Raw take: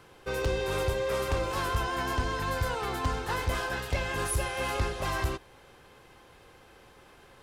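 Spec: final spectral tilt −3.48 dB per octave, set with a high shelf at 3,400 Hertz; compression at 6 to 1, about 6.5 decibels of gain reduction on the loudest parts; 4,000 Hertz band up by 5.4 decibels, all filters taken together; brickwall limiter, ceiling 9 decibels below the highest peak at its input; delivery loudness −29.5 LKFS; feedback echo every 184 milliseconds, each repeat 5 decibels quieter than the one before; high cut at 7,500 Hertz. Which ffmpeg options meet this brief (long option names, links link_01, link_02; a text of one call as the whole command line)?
ffmpeg -i in.wav -af "lowpass=7500,highshelf=frequency=3400:gain=5.5,equalizer=frequency=4000:width_type=o:gain=3.5,acompressor=threshold=-30dB:ratio=6,alimiter=level_in=3.5dB:limit=-24dB:level=0:latency=1,volume=-3.5dB,aecho=1:1:184|368|552|736|920|1104|1288:0.562|0.315|0.176|0.0988|0.0553|0.031|0.0173,volume=5dB" out.wav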